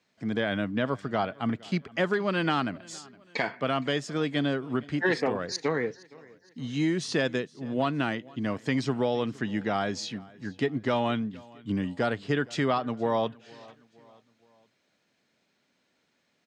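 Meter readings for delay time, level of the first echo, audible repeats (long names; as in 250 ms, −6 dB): 465 ms, −23.5 dB, 2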